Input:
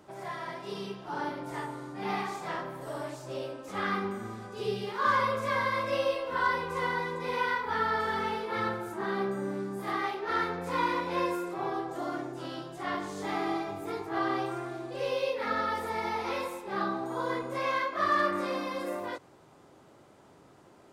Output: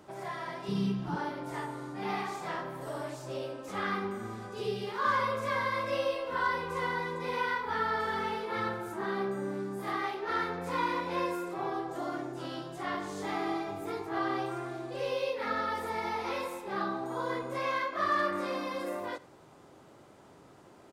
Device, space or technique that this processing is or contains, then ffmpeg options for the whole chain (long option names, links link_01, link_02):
parallel compression: -filter_complex "[0:a]asplit=2[link_01][link_02];[link_02]acompressor=threshold=-39dB:ratio=6,volume=-3dB[link_03];[link_01][link_03]amix=inputs=2:normalize=0,asettb=1/sr,asplit=3[link_04][link_05][link_06];[link_04]atrim=end=0.684[link_07];[link_05]atrim=start=0.68:end=1.16,asetpts=PTS-STARTPTS,afade=type=in:duration=0.004:curve=qsin,afade=type=out:start_time=0.476:duration=0.004:curve=qsin,lowshelf=frequency=310:width_type=q:width=1.5:gain=11.5[link_08];[link_06]atrim=start=1.156[link_09];[link_07][link_08]acrossfade=duration=0.004:curve1=hsin:curve2=qsin[link_10];[link_10][link_09]acrossfade=duration=0.004:curve1=qsin:curve2=hsin,aecho=1:1:84:0.0944,volume=-3.5dB"